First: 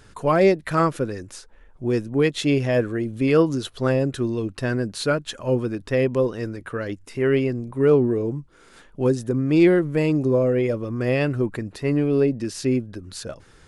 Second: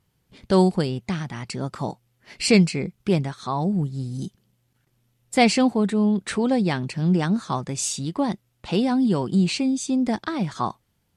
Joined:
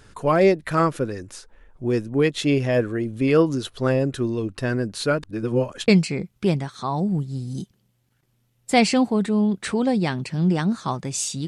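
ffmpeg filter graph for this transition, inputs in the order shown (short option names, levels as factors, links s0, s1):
-filter_complex "[0:a]apad=whole_dur=11.47,atrim=end=11.47,asplit=2[s0][s1];[s0]atrim=end=5.232[s2];[s1]atrim=start=5.228:end=5.882,asetpts=PTS-STARTPTS,areverse[s3];[1:a]atrim=start=2.518:end=8.11[s4];[s2][s3]acrossfade=d=0.004:c1=hsin:c2=hsin[s5];[s5][s4]acrossfade=d=0.004:c1=hsin:c2=hsin"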